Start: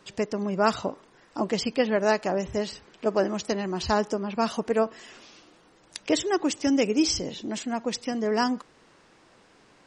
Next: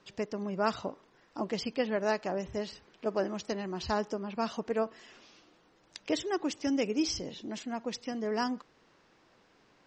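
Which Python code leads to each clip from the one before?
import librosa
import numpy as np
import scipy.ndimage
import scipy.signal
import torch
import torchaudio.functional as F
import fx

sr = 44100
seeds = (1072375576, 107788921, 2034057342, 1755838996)

y = scipy.signal.sosfilt(scipy.signal.butter(4, 6600.0, 'lowpass', fs=sr, output='sos'), x)
y = F.gain(torch.from_numpy(y), -7.0).numpy()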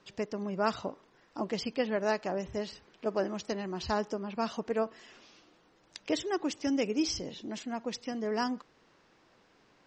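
y = x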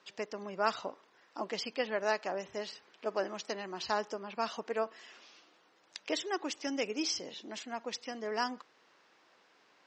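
y = fx.weighting(x, sr, curve='A')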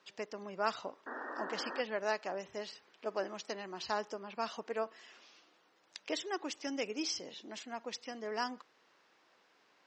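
y = fx.spec_paint(x, sr, seeds[0], shape='noise', start_s=1.06, length_s=0.75, low_hz=230.0, high_hz=1900.0, level_db=-40.0)
y = F.gain(torch.from_numpy(y), -3.0).numpy()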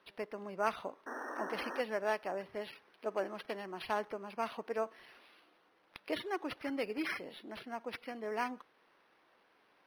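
y = np.interp(np.arange(len(x)), np.arange(len(x))[::6], x[::6])
y = F.gain(torch.from_numpy(y), 1.0).numpy()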